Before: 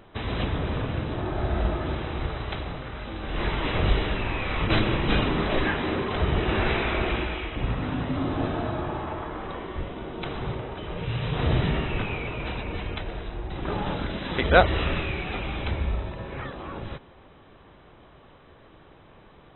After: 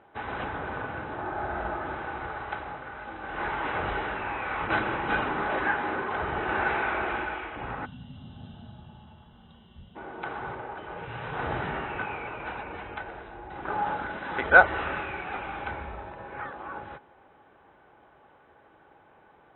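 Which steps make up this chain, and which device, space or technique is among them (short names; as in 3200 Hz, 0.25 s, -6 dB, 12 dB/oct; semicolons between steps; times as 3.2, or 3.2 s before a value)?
HPF 50 Hz; tone controls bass -9 dB, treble -14 dB; spectral gain 7.85–9.95, 250–2700 Hz -22 dB; inside a cardboard box (LPF 3300 Hz 12 dB/oct; small resonant body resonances 830/1500 Hz, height 11 dB, ringing for 45 ms); dynamic EQ 1300 Hz, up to +6 dB, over -42 dBFS, Q 1.1; gain -5 dB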